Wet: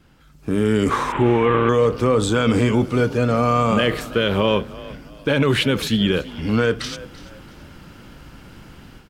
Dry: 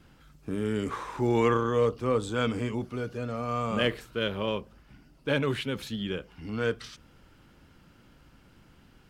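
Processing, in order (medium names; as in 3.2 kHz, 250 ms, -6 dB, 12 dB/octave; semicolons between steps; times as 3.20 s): 1.12–1.69 s: CVSD coder 16 kbps; peak limiter -23 dBFS, peak gain reduction 9.5 dB; level rider gain up to 13 dB; frequency-shifting echo 336 ms, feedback 33%, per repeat +36 Hz, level -18 dB; trim +2 dB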